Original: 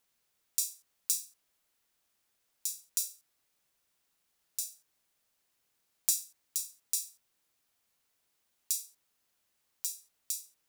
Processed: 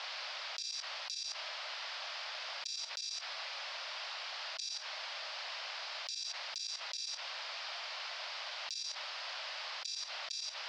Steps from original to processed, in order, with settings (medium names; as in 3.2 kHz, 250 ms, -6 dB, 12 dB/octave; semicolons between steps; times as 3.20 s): level held to a coarse grid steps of 16 dB; Chebyshev band-pass 590–5000 Hz, order 4; level flattener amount 100%; trim +4 dB